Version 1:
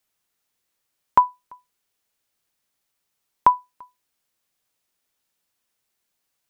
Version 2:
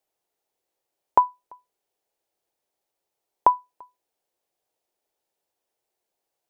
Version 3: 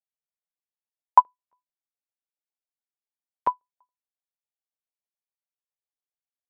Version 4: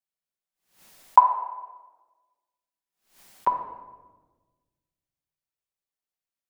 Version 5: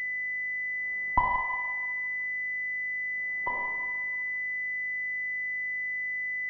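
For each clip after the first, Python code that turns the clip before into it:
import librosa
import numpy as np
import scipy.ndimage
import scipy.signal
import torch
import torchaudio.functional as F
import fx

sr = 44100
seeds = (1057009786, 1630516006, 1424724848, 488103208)

y1 = fx.band_shelf(x, sr, hz=540.0, db=12.0, octaves=1.7)
y1 = y1 * librosa.db_to_amplitude(-7.5)
y2 = fx.filter_lfo_highpass(y1, sr, shape='saw_up', hz=7.2, low_hz=490.0, high_hz=1900.0, q=1.6)
y2 = fx.upward_expand(y2, sr, threshold_db=-25.0, expansion=2.5)
y3 = fx.room_shoebox(y2, sr, seeds[0], volume_m3=890.0, walls='mixed', distance_m=1.1)
y3 = fx.pre_swell(y3, sr, db_per_s=130.0)
y4 = fx.rev_schroeder(y3, sr, rt60_s=1.3, comb_ms=26, drr_db=-0.5)
y4 = fx.dmg_buzz(y4, sr, base_hz=50.0, harmonics=25, level_db=-56.0, tilt_db=-2, odd_only=False)
y4 = fx.pwm(y4, sr, carrier_hz=2000.0)
y4 = y4 * librosa.db_to_amplitude(-6.5)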